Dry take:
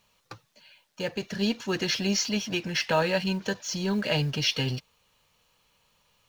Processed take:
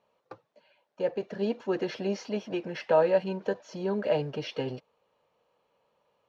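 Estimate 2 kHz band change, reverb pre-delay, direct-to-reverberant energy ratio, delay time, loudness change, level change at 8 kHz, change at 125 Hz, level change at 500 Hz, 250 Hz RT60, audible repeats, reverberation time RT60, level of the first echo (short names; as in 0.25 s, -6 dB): -9.5 dB, none, none, none, -2.5 dB, under -15 dB, -8.0 dB, +4.0 dB, none, none, none, none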